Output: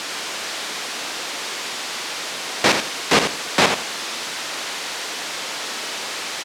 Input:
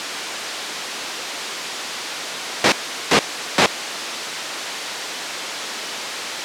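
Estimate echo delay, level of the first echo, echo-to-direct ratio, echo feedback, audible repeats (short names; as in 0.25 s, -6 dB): 83 ms, -7.0 dB, -7.0 dB, 22%, 2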